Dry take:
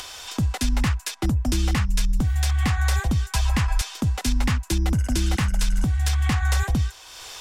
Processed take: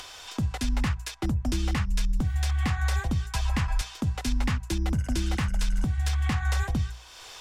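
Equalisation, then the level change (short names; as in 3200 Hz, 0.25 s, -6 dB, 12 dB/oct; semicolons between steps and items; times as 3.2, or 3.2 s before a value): high shelf 6500 Hz -6.5 dB; notches 60/120/180 Hz; -4.0 dB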